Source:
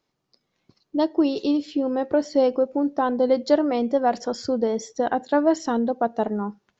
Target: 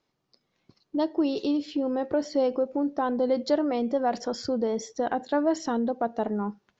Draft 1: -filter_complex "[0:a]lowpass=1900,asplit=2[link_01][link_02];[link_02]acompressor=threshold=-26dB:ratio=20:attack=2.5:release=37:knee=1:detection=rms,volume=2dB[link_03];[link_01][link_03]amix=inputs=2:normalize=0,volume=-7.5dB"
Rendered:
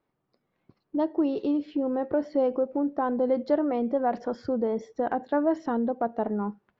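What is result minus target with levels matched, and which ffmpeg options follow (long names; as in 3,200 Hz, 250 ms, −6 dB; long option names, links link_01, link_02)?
8,000 Hz band −19.5 dB
-filter_complex "[0:a]lowpass=7000,asplit=2[link_01][link_02];[link_02]acompressor=threshold=-26dB:ratio=20:attack=2.5:release=37:knee=1:detection=rms,volume=2dB[link_03];[link_01][link_03]amix=inputs=2:normalize=0,volume=-7.5dB"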